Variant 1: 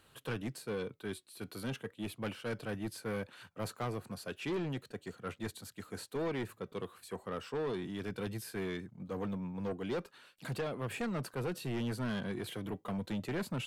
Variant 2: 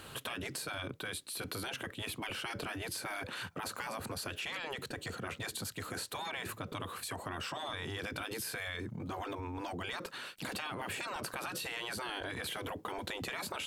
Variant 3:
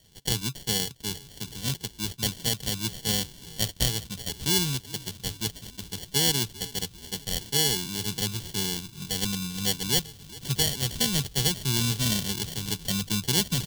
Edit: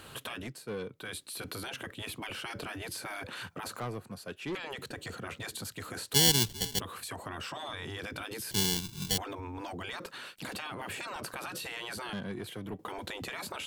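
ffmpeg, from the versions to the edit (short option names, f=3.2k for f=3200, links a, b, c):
-filter_complex "[0:a]asplit=3[a][b][c];[2:a]asplit=2[d][e];[1:a]asplit=6[f][g][h][i][j][k];[f]atrim=end=0.53[l];[a]atrim=start=0.37:end=1.09[m];[g]atrim=start=0.93:end=3.802[n];[b]atrim=start=3.798:end=4.552[o];[h]atrim=start=4.548:end=6.142[p];[d]atrim=start=6.138:end=6.802[q];[i]atrim=start=6.798:end=8.512[r];[e]atrim=start=8.508:end=9.182[s];[j]atrim=start=9.178:end=12.132[t];[c]atrim=start=12.128:end=12.792[u];[k]atrim=start=12.788[v];[l][m]acrossfade=d=0.16:c1=tri:c2=tri[w];[w][n]acrossfade=d=0.16:c1=tri:c2=tri[x];[x][o]acrossfade=d=0.004:c1=hsin:c2=hsin[y];[y][p]acrossfade=d=0.004:c1=hsin:c2=hsin[z];[z][q]acrossfade=d=0.004:c1=hsin:c2=hsin[aa];[aa][r]acrossfade=d=0.004:c1=hsin:c2=hsin[ab];[ab][s]acrossfade=d=0.004:c1=hsin:c2=hsin[ac];[ac][t]acrossfade=d=0.004:c1=hsin:c2=hsin[ad];[ad][u]acrossfade=d=0.004:c1=hsin:c2=hsin[ae];[ae][v]acrossfade=d=0.004:c1=hsin:c2=hsin"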